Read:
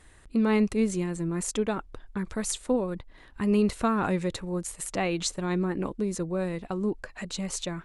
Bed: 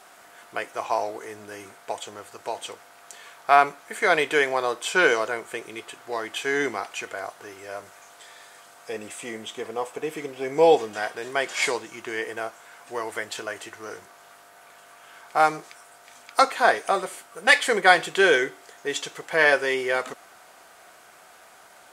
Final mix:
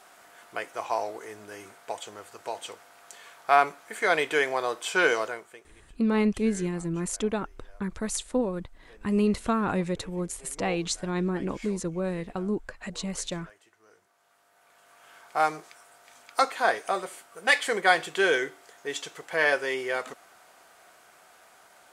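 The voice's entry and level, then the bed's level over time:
5.65 s, −0.5 dB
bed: 0:05.25 −3.5 dB
0:05.72 −22.5 dB
0:13.87 −22.5 dB
0:15.08 −5 dB

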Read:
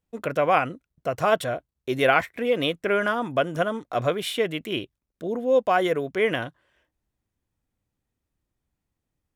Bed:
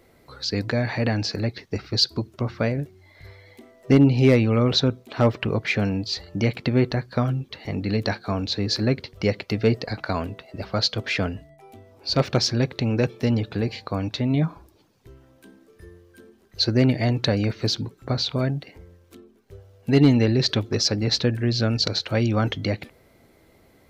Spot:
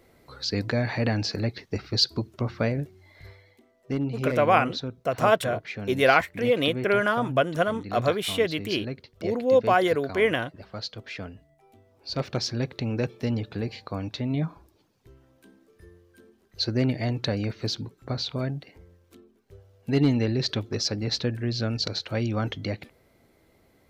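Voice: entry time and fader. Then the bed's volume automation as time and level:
4.00 s, +0.5 dB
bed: 0:03.28 −2 dB
0:03.61 −12.5 dB
0:11.34 −12.5 dB
0:12.74 −5.5 dB

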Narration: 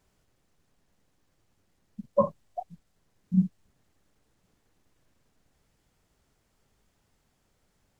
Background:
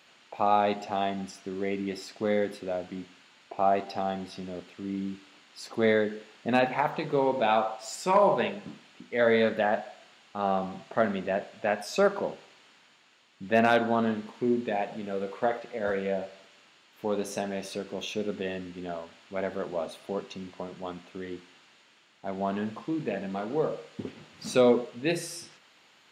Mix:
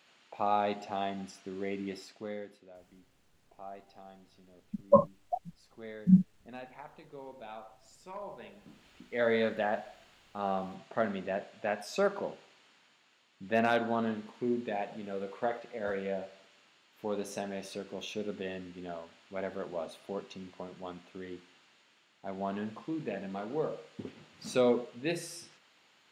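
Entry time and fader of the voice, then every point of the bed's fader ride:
2.75 s, +2.0 dB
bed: 0:01.94 −5.5 dB
0:02.71 −21.5 dB
0:08.41 −21.5 dB
0:08.88 −5.5 dB

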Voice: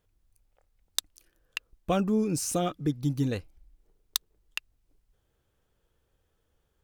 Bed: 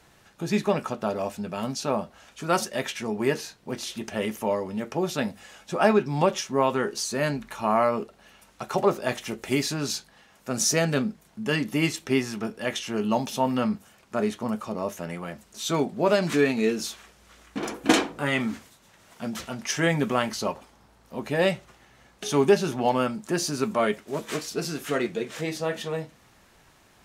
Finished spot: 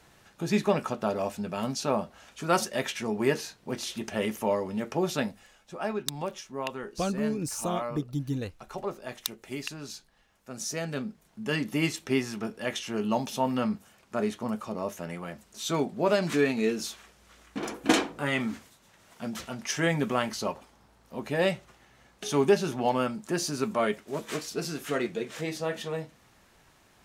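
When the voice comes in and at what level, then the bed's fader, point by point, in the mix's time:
5.10 s, −3.5 dB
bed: 0:05.18 −1 dB
0:05.56 −12 dB
0:10.57 −12 dB
0:11.62 −3 dB

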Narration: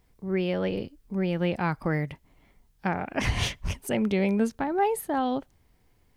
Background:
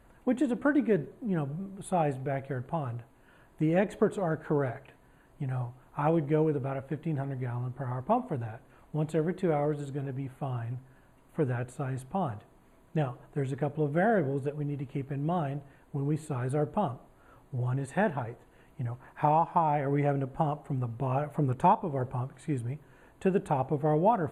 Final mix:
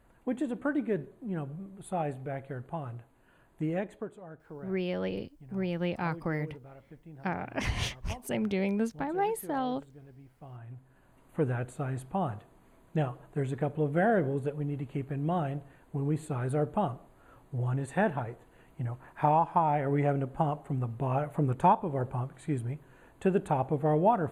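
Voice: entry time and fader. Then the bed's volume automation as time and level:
4.40 s, −5.0 dB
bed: 0:03.69 −4.5 dB
0:04.20 −17 dB
0:10.29 −17 dB
0:11.19 0 dB

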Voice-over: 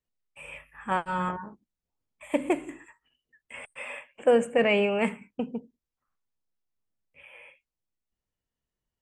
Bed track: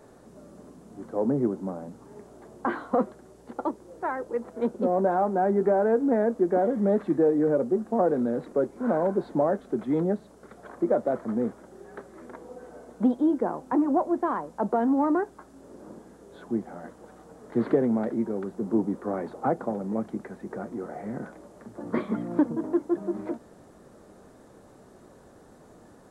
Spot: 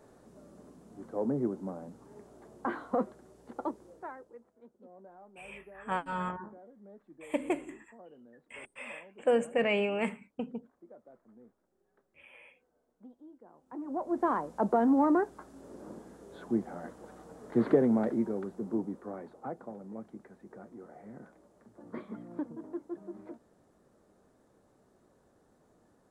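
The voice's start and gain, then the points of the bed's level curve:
5.00 s, −5.5 dB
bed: 0:03.85 −6 dB
0:04.61 −30 dB
0:13.43 −30 dB
0:14.25 −1.5 dB
0:18.09 −1.5 dB
0:19.40 −14 dB

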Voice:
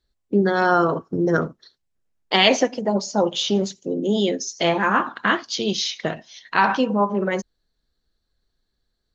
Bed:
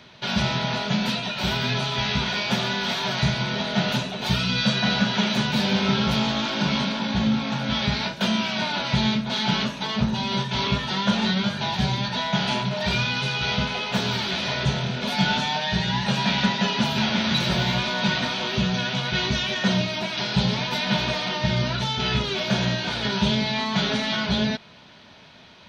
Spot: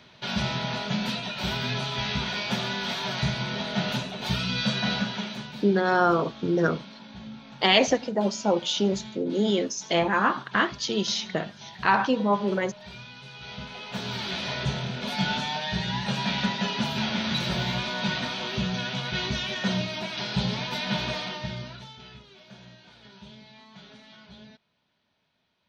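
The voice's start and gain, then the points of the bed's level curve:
5.30 s, −3.5 dB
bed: 0:04.93 −4.5 dB
0:05.69 −19.5 dB
0:13.22 −19.5 dB
0:14.29 −5 dB
0:21.19 −5 dB
0:22.22 −25.5 dB

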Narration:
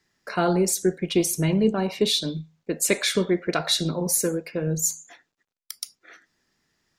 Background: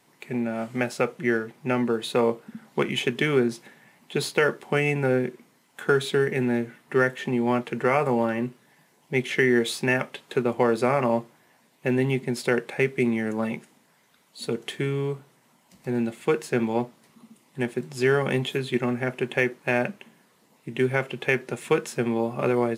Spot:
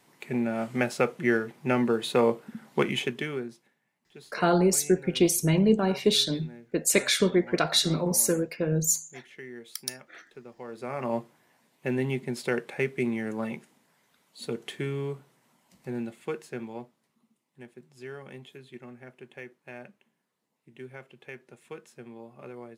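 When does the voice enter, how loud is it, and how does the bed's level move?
4.05 s, −0.5 dB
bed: 0:02.89 −0.5 dB
0:03.81 −22.5 dB
0:10.57 −22.5 dB
0:11.16 −5 dB
0:15.67 −5 dB
0:17.44 −20 dB

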